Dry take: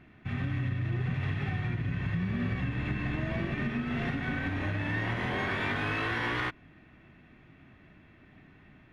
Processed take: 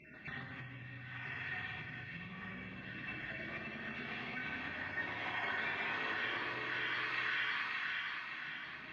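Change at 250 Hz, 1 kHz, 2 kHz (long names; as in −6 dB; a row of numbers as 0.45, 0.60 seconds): −16.0, −5.5, −2.0 decibels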